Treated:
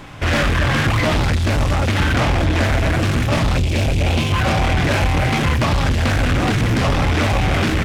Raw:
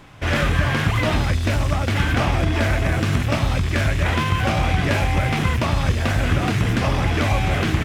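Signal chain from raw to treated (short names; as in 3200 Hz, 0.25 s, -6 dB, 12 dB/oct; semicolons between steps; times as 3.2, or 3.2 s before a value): spectral gain 3.57–4.32, 850–2200 Hz -13 dB; soft clip -22 dBFS, distortion -9 dB; on a send at -16.5 dB: reverb RT60 0.65 s, pre-delay 4 ms; on the sum: Doppler distortion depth 0.2 ms; gain +8.5 dB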